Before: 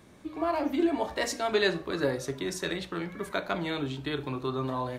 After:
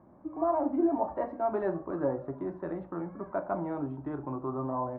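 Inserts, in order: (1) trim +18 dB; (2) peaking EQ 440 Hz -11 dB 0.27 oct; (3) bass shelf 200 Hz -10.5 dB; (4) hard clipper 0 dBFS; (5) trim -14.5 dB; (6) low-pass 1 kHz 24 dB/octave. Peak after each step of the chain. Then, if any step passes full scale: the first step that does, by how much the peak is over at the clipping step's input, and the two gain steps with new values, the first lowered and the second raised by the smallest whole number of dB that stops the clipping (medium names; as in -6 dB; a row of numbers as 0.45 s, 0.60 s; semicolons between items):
+6.5 dBFS, +5.0 dBFS, +4.5 dBFS, 0.0 dBFS, -14.5 dBFS, -16.5 dBFS; step 1, 4.5 dB; step 1 +13 dB, step 5 -9.5 dB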